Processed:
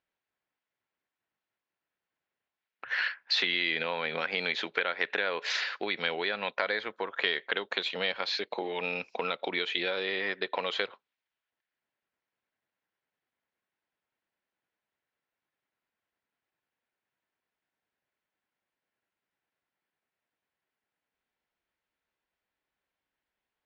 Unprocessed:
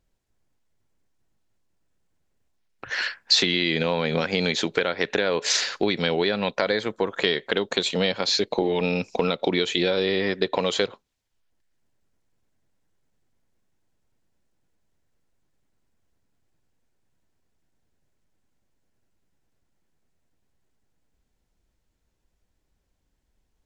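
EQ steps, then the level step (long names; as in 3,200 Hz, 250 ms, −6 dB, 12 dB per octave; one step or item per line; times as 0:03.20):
resonant band-pass 2,100 Hz, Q 0.73
high-frequency loss of the air 180 metres
0.0 dB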